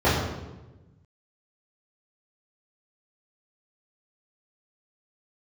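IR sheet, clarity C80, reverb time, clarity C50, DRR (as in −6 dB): 4.0 dB, 1.1 s, 1.5 dB, −12.5 dB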